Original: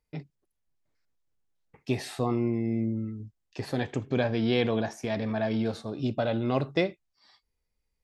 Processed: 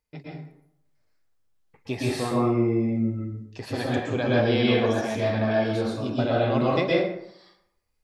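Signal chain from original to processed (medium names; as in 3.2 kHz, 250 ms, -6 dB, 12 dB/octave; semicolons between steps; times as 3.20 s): bass shelf 380 Hz -4 dB; plate-style reverb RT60 0.75 s, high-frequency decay 0.6×, pre-delay 105 ms, DRR -5.5 dB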